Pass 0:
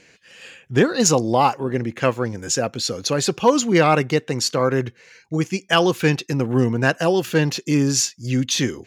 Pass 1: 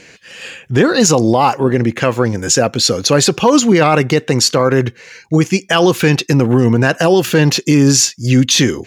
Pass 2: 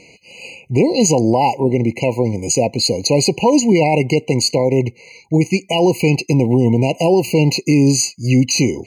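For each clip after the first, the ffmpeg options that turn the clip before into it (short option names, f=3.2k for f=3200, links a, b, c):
-af "alimiter=level_in=12dB:limit=-1dB:release=50:level=0:latency=1,volume=-1dB"
-af "afftfilt=real='re*eq(mod(floor(b*sr/1024/1000),2),0)':imag='im*eq(mod(floor(b*sr/1024/1000),2),0)':win_size=1024:overlap=0.75,volume=-2dB"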